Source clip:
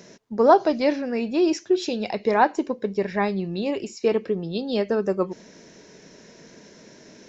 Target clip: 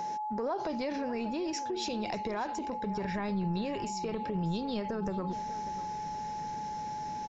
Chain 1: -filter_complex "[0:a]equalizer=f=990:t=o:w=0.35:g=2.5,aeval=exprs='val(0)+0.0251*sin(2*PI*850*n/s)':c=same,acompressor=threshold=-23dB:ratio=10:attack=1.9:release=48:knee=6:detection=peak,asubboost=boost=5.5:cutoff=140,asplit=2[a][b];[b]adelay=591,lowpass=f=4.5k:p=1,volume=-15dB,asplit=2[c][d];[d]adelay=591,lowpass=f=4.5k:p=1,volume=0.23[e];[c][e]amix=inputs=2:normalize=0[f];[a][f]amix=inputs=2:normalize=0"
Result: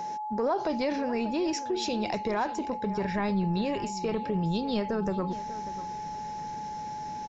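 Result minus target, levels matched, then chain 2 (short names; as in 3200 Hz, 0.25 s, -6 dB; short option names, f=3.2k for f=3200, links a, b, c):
compressor: peak gain reduction -6 dB
-filter_complex "[0:a]equalizer=f=990:t=o:w=0.35:g=2.5,aeval=exprs='val(0)+0.0251*sin(2*PI*850*n/s)':c=same,acompressor=threshold=-29.5dB:ratio=10:attack=1.9:release=48:knee=6:detection=peak,asubboost=boost=5.5:cutoff=140,asplit=2[a][b];[b]adelay=591,lowpass=f=4.5k:p=1,volume=-15dB,asplit=2[c][d];[d]adelay=591,lowpass=f=4.5k:p=1,volume=0.23[e];[c][e]amix=inputs=2:normalize=0[f];[a][f]amix=inputs=2:normalize=0"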